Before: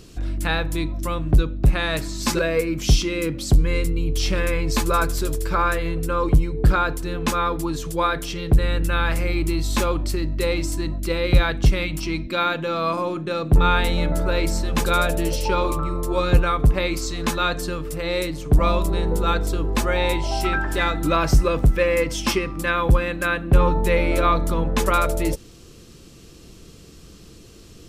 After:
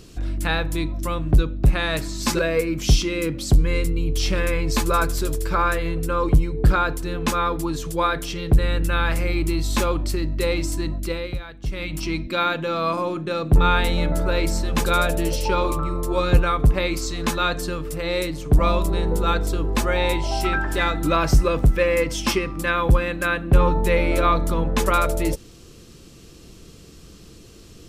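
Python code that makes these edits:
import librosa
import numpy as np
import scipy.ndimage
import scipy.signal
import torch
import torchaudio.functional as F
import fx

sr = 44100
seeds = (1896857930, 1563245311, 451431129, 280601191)

y = fx.edit(x, sr, fx.fade_down_up(start_s=10.98, length_s=1.04, db=-16.0, fade_s=0.4), tone=tone)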